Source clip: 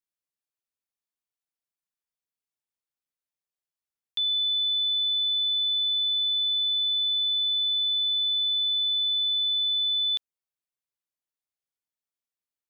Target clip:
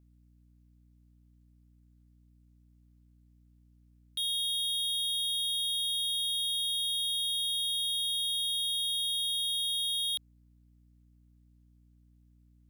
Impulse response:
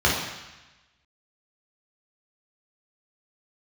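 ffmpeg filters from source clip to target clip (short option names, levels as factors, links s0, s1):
-af "volume=53.1,asoftclip=hard,volume=0.0188,aeval=exprs='val(0)*sin(2*PI*220*n/s)':c=same,aeval=exprs='val(0)+0.000447*(sin(2*PI*60*n/s)+sin(2*PI*2*60*n/s)/2+sin(2*PI*3*60*n/s)/3+sin(2*PI*4*60*n/s)/4+sin(2*PI*5*60*n/s)/5)':c=same,volume=2.11"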